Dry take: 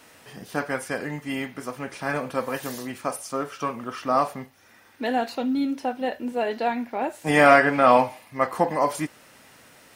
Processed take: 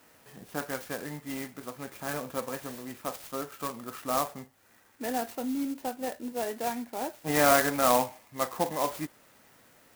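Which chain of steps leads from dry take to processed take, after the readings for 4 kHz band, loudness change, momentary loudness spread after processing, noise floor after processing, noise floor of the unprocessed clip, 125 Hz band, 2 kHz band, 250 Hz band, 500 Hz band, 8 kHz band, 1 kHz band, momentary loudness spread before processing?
−2.0 dB, −6.5 dB, 15 LU, −61 dBFS, −54 dBFS, −7.0 dB, −9.0 dB, −7.0 dB, −7.5 dB, +4.0 dB, −7.5 dB, 15 LU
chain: converter with an unsteady clock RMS 0.069 ms
level −7 dB

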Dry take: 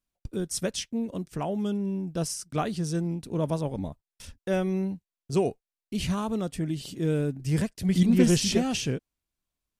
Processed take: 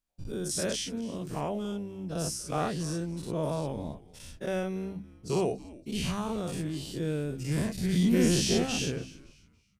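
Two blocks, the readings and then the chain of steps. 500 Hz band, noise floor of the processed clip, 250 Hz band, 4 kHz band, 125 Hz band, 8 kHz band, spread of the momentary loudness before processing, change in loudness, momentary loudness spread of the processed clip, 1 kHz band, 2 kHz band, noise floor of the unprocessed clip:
−2.0 dB, −62 dBFS, −4.0 dB, −0.5 dB, −3.5 dB, −0.5 dB, 12 LU, −3.0 dB, 14 LU, −1.0 dB, −0.5 dB, below −85 dBFS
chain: every bin's largest magnitude spread in time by 120 ms
hum removal 64.98 Hz, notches 5
echo with shifted repeats 282 ms, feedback 31%, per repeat −110 Hz, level −19 dB
level −7 dB

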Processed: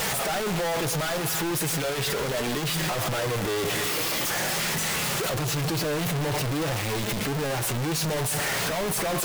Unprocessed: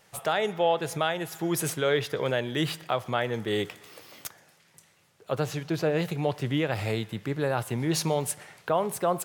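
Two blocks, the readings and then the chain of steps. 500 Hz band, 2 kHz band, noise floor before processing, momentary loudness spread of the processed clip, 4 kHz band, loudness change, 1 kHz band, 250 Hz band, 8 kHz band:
−1.0 dB, +5.5 dB, −62 dBFS, 2 LU, +6.5 dB, +2.5 dB, +1.0 dB, +1.0 dB, +9.0 dB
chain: sign of each sample alone
flanger 0.41 Hz, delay 4.4 ms, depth 2.9 ms, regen −49%
level +6 dB

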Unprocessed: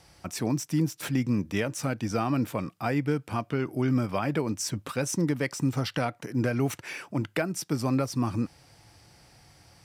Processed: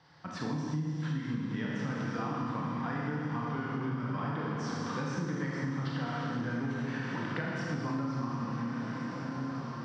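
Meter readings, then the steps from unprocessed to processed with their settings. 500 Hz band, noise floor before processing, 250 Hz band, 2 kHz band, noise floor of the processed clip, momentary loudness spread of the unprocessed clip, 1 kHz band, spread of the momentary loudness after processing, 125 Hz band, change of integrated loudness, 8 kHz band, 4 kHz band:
−9.0 dB, −60 dBFS, −5.5 dB, −2.5 dB, −39 dBFS, 5 LU, −2.5 dB, 2 LU, −4.5 dB, −6.0 dB, −17.0 dB, −8.0 dB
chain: loudspeaker in its box 140–4,400 Hz, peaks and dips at 150 Hz +7 dB, 380 Hz −6 dB, 620 Hz −8 dB, 1,000 Hz +7 dB, 1,700 Hz +6 dB, 2,400 Hz −9 dB
on a send: feedback delay with all-pass diffusion 1,436 ms, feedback 52%, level −11 dB
on the sum: four-comb reverb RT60 2.6 s, combs from 26 ms, DRR −5 dB
downward compressor, threshold −26 dBFS, peak gain reduction 12 dB
level −5 dB

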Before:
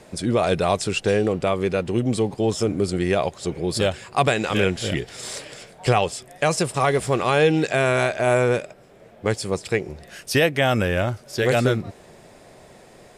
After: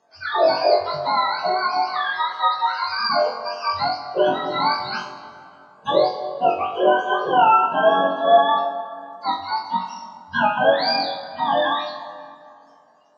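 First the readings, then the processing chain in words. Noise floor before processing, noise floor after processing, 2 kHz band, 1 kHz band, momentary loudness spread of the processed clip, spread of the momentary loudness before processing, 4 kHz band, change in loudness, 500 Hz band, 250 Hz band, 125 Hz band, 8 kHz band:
−49 dBFS, −51 dBFS, +0.5 dB, +8.5 dB, 13 LU, 9 LU, +3.5 dB, +2.0 dB, +0.5 dB, −7.5 dB, −18.0 dB, below −20 dB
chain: frequency axis turned over on the octave scale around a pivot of 650 Hz
noise reduction from a noise print of the clip's start 15 dB
loudspeaker in its box 430–5,500 Hz, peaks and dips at 450 Hz +6 dB, 660 Hz +7 dB, 1,500 Hz +8 dB, 2,200 Hz −10 dB, 3,300 Hz −7 dB, 4,800 Hz +10 dB
flutter between parallel walls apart 3.7 metres, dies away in 0.36 s
dense smooth reverb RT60 2.5 s, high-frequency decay 0.55×, DRR 7.5 dB

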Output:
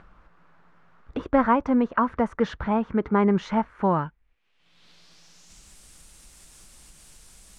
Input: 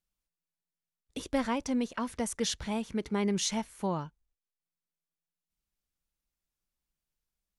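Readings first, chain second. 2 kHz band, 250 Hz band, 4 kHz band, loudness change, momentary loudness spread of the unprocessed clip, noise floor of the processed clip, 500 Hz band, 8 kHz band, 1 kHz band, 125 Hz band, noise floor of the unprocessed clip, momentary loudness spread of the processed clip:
+8.0 dB, +9.0 dB, −7.5 dB, +8.5 dB, 7 LU, −65 dBFS, +9.5 dB, below −10 dB, +13.0 dB, +8.5 dB, below −85 dBFS, 7 LU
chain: upward compression, threshold −37 dBFS
low-pass filter sweep 1,300 Hz → 8,800 Hz, 0:03.68–0:05.78
level +8.5 dB

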